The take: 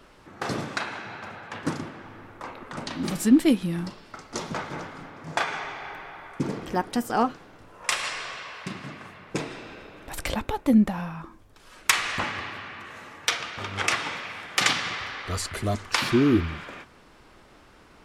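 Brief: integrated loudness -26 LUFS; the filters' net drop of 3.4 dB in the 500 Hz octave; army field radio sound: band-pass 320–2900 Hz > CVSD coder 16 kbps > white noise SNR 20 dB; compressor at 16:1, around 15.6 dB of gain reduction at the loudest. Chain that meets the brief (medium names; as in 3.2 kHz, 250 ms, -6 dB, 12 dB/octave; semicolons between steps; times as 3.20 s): peaking EQ 500 Hz -3 dB; compression 16:1, threshold -29 dBFS; band-pass 320–2900 Hz; CVSD coder 16 kbps; white noise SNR 20 dB; trim +13 dB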